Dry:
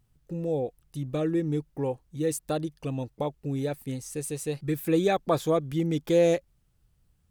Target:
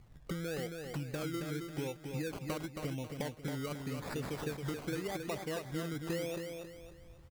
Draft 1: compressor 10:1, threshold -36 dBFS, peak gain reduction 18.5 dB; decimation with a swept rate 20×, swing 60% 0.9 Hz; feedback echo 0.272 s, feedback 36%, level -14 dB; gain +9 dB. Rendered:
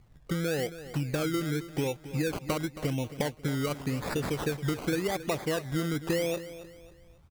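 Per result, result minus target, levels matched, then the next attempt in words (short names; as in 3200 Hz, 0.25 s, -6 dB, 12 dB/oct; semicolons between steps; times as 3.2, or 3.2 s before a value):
compressor: peak gain reduction -9 dB; echo-to-direct -8.5 dB
compressor 10:1, threshold -46 dBFS, peak gain reduction 27.5 dB; decimation with a swept rate 20×, swing 60% 0.9 Hz; feedback echo 0.272 s, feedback 36%, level -14 dB; gain +9 dB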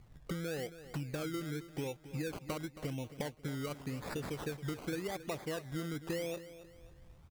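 echo-to-direct -8.5 dB
compressor 10:1, threshold -46 dBFS, peak gain reduction 27.5 dB; decimation with a swept rate 20×, swing 60% 0.9 Hz; feedback echo 0.272 s, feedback 36%, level -5.5 dB; gain +9 dB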